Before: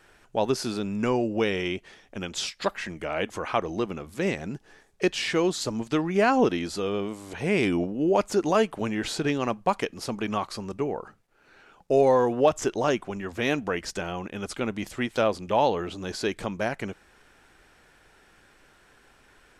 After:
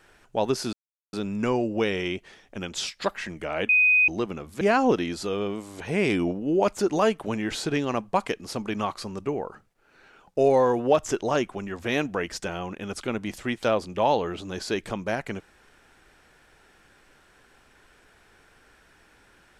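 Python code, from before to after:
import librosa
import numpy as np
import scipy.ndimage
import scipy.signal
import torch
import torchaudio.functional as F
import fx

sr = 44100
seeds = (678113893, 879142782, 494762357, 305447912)

y = fx.edit(x, sr, fx.insert_silence(at_s=0.73, length_s=0.4),
    fx.bleep(start_s=3.29, length_s=0.39, hz=2500.0, db=-15.5),
    fx.cut(start_s=4.21, length_s=1.93), tone=tone)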